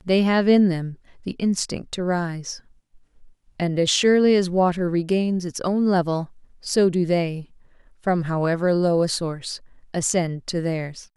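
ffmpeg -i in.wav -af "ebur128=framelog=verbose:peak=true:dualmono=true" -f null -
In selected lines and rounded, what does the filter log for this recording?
Integrated loudness:
  I:         -18.8 LUFS
  Threshold: -29.6 LUFS
Loudness range:
  LRA:         3.4 LU
  Threshold: -39.7 LUFS
  LRA low:   -21.3 LUFS
  LRA high:  -17.8 LUFS
True peak:
  Peak:       -5.7 dBFS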